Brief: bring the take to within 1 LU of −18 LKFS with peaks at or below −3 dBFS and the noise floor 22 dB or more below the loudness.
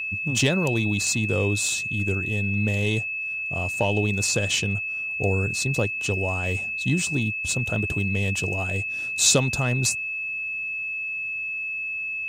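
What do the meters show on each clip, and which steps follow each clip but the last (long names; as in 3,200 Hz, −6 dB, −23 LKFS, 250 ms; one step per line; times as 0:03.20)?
interfering tone 2,600 Hz; level of the tone −27 dBFS; integrated loudness −24.0 LKFS; sample peak −5.5 dBFS; target loudness −18.0 LKFS
→ notch filter 2,600 Hz, Q 30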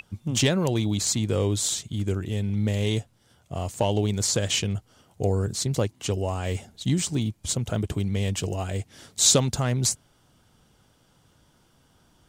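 interfering tone none found; integrated loudness −25.5 LKFS; sample peak −6.0 dBFS; target loudness −18.0 LKFS
→ level +7.5 dB
brickwall limiter −3 dBFS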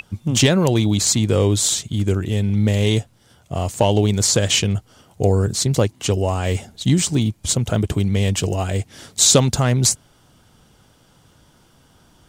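integrated loudness −18.5 LKFS; sample peak −3.0 dBFS; background noise floor −55 dBFS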